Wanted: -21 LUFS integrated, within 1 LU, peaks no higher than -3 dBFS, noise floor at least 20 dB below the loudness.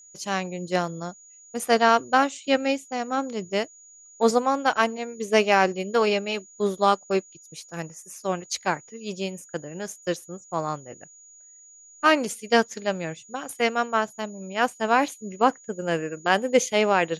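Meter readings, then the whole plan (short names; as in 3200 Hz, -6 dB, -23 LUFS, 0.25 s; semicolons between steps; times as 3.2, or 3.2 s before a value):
steady tone 6800 Hz; tone level -48 dBFS; loudness -24.5 LUFS; peak -4.5 dBFS; loudness target -21.0 LUFS
-> notch 6800 Hz, Q 30; gain +3.5 dB; limiter -3 dBFS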